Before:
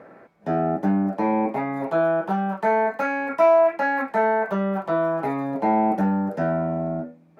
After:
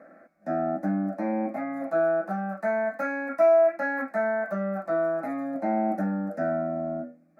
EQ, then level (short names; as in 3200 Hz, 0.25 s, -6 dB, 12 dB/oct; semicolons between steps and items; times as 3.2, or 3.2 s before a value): HPF 69 Hz; bell 620 Hz +2.5 dB 0.21 oct; fixed phaser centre 630 Hz, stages 8; -3.5 dB